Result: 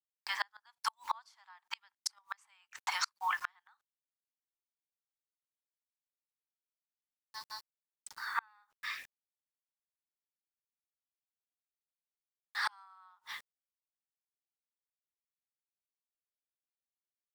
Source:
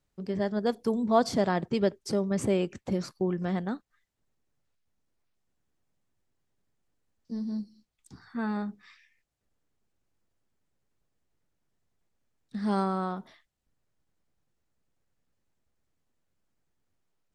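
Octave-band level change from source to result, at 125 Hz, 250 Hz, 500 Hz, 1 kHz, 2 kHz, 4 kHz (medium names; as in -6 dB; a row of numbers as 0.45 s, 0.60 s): under -40 dB, under -40 dB, -35.5 dB, -5.0 dB, +3.0 dB, +1.5 dB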